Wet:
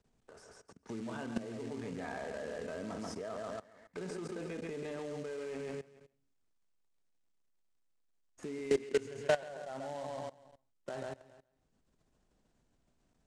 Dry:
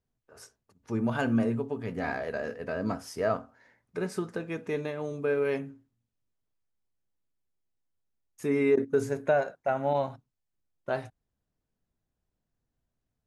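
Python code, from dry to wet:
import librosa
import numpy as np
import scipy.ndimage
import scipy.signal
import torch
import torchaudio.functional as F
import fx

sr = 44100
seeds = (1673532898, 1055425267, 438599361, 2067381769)

p1 = fx.sample_hold(x, sr, seeds[0], rate_hz=2500.0, jitter_pct=20)
p2 = x + (p1 * librosa.db_to_amplitude(-9.5))
p3 = fx.peak_eq(p2, sr, hz=110.0, db=-7.0, octaves=0.76)
p4 = p3 + fx.echo_feedback(p3, sr, ms=137, feedback_pct=28, wet_db=-6, dry=0)
p5 = fx.level_steps(p4, sr, step_db=21)
p6 = fx.peak_eq(p5, sr, hz=2700.0, db=7.0, octaves=1.6, at=(8.82, 9.49))
p7 = fx.quant_float(p6, sr, bits=2)
p8 = scipy.signal.sosfilt(scipy.signal.cheby1(3, 1.0, 8300.0, 'lowpass', fs=sr, output='sos'), p7)
p9 = fx.band_squash(p8, sr, depth_pct=40)
y = p9 * librosa.db_to_amplitude(1.0)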